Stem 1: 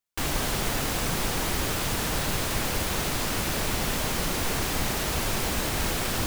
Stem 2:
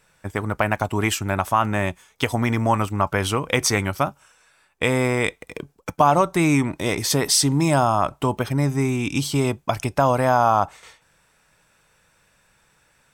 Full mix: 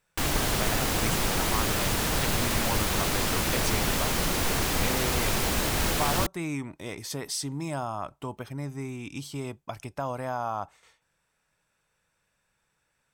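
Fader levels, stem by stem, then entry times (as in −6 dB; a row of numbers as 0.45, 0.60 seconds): +1.0, −14.0 decibels; 0.00, 0.00 seconds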